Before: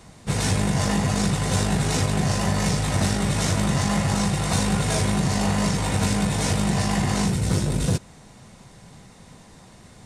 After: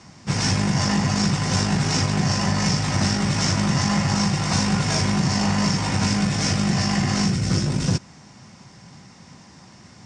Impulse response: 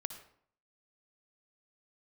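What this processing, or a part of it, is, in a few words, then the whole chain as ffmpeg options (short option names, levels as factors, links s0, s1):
car door speaker: -filter_complex "[0:a]highpass=94,equalizer=f=460:t=q:w=4:g=-8,equalizer=f=650:t=q:w=4:g=-4,equalizer=f=3800:t=q:w=4:g=-6,equalizer=f=5300:t=q:w=4:g=8,lowpass=f=7000:w=0.5412,lowpass=f=7000:w=1.3066,asettb=1/sr,asplit=3[s0][s1][s2];[s0]atrim=end=6.164[s3];[s1]atrim=start=6.16:end=7.67,asetpts=PTS-STARTPTS,afade=t=in:d=0.004:c=qsin,afade=t=out:st=1.506:d=0.004:c=qsin,bandreject=f=920:w=6.1[s4];[s2]atrim=start=7.666[s5];[s3][s4]acrossfade=d=0.004:c1=hsin:c2=qsin[s6];[s6][s5]acrossfade=d=0.004:c1=qsin:c2=hsin,volume=1.33"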